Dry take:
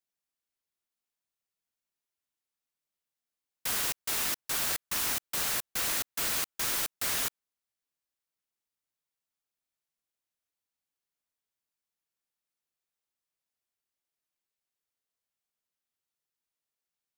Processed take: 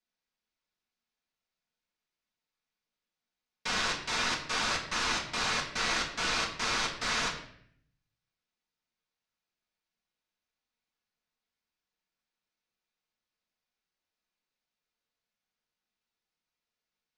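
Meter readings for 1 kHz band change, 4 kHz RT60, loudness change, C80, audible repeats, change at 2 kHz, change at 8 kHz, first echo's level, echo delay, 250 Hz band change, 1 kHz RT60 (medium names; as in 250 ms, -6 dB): +7.0 dB, 0.55 s, -1.0 dB, 10.5 dB, no echo, +6.0 dB, -5.0 dB, no echo, no echo, +5.5 dB, 0.60 s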